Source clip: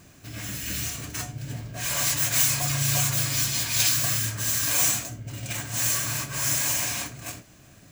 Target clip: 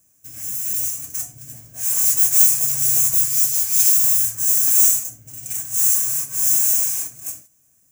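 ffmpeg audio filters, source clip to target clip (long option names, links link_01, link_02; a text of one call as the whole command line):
ffmpeg -i in.wav -af "agate=range=-10dB:threshold=-47dB:ratio=16:detection=peak,aexciter=amount=7:drive=7.8:freq=5900,volume=-10.5dB" out.wav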